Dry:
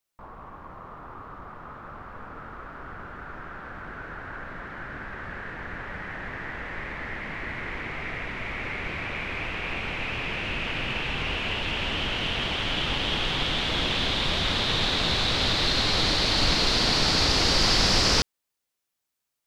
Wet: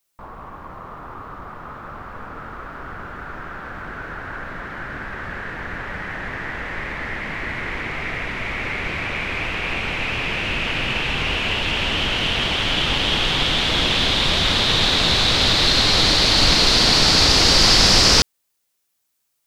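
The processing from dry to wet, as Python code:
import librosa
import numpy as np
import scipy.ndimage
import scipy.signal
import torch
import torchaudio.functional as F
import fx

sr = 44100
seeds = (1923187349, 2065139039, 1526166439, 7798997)

y = fx.high_shelf(x, sr, hz=4900.0, db=6.0)
y = y * librosa.db_to_amplitude(6.0)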